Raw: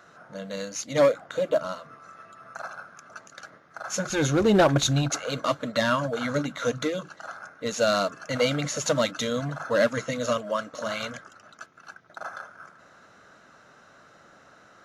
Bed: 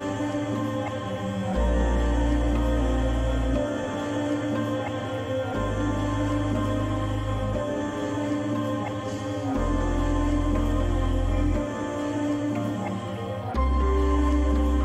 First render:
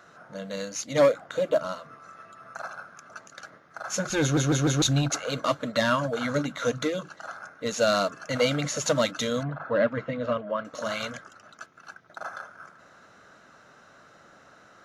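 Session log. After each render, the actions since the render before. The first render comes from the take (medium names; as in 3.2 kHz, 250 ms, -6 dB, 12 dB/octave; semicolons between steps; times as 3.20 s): 4.22 s: stutter in place 0.15 s, 4 plays; 9.43–10.65 s: distance through air 440 m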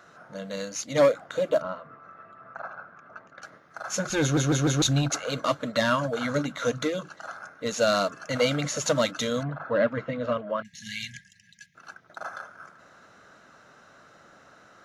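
1.62–3.42 s: low-pass 1.9 kHz; 10.62–11.75 s: brick-wall FIR band-stop 220–1600 Hz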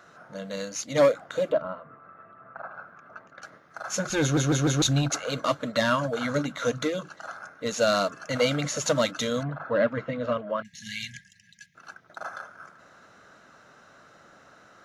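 1.52–2.75 s: distance through air 310 m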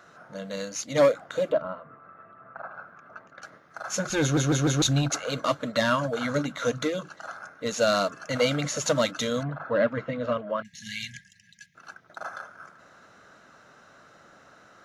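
no audible change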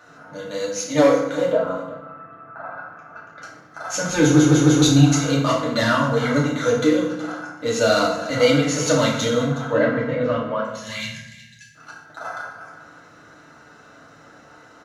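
delay 368 ms -16.5 dB; FDN reverb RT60 0.86 s, low-frequency decay 1.45×, high-frequency decay 0.7×, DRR -5 dB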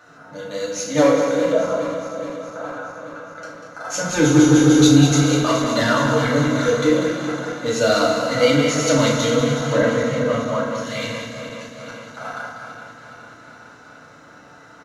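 backward echo that repeats 209 ms, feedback 80%, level -11 dB; delay 193 ms -7.5 dB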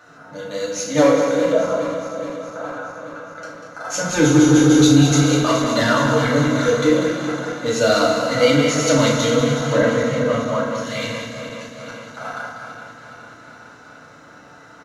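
trim +1 dB; peak limiter -3 dBFS, peak gain reduction 2.5 dB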